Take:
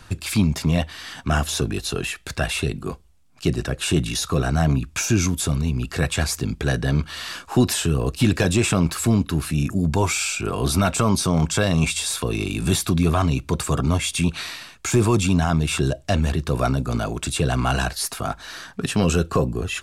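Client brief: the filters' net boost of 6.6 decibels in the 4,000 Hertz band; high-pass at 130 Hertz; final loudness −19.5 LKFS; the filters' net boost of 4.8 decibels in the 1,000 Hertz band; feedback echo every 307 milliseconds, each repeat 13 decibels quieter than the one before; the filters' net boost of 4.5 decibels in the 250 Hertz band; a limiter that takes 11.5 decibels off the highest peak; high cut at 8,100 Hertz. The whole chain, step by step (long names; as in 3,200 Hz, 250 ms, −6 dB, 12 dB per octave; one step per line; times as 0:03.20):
high-pass filter 130 Hz
low-pass filter 8,100 Hz
parametric band 250 Hz +6.5 dB
parametric band 1,000 Hz +5.5 dB
parametric band 4,000 Hz +8 dB
brickwall limiter −13.5 dBFS
repeating echo 307 ms, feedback 22%, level −13 dB
level +3.5 dB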